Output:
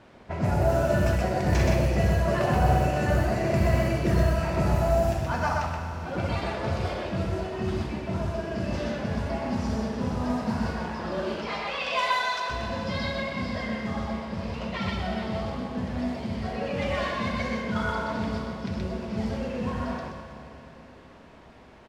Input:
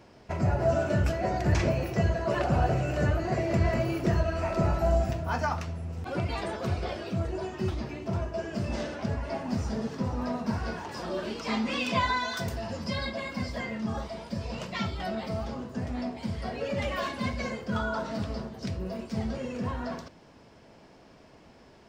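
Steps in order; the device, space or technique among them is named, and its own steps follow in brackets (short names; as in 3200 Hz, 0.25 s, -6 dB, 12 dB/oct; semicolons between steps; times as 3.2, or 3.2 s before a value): 11.46–12.5 HPF 480 Hz 24 dB/oct; loudspeakers at several distances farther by 22 m -9 dB, 43 m -2 dB; cassette deck with a dynamic noise filter (white noise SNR 22 dB; low-pass opened by the level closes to 1900 Hz, open at -19 dBFS); Schroeder reverb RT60 3.5 s, combs from 28 ms, DRR 6 dB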